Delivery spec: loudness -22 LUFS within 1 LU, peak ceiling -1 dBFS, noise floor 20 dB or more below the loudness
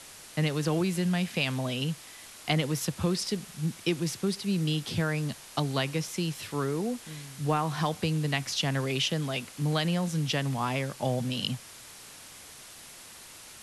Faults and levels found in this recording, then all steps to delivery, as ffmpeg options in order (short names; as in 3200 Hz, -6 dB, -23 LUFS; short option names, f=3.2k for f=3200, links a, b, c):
noise floor -48 dBFS; noise floor target -50 dBFS; loudness -30.0 LUFS; peak -12.0 dBFS; loudness target -22.0 LUFS
-> -af "afftdn=nr=6:nf=-48"
-af "volume=8dB"